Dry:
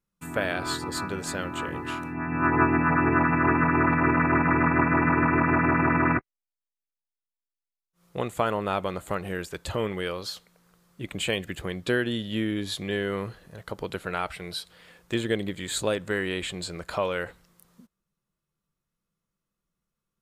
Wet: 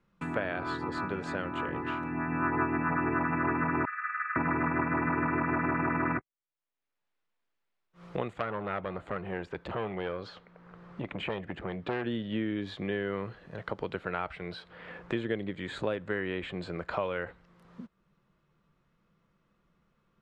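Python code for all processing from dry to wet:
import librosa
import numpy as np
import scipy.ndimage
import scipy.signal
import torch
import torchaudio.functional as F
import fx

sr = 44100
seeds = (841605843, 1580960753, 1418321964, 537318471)

y = fx.chain(x, sr, fx.cheby_ripple_highpass(hz=1200.0, ripple_db=6),
    fx.high_shelf(hz=5000.0, db=-11.5), at=(3.85, 4.36))
y = fx.chain(y, sr, fx.high_shelf(hz=5200.0, db=-10.0),
    fx.transformer_sat(knee_hz=2000.0), at=(8.33, 12.04))
y = scipy.signal.sosfilt(scipy.signal.butter(2, 2500.0, 'lowpass', fs=sr, output='sos'), y)
y = fx.low_shelf(y, sr, hz=90.0, db=-5.5)
y = fx.band_squash(y, sr, depth_pct=70)
y = y * 10.0 ** (-5.5 / 20.0)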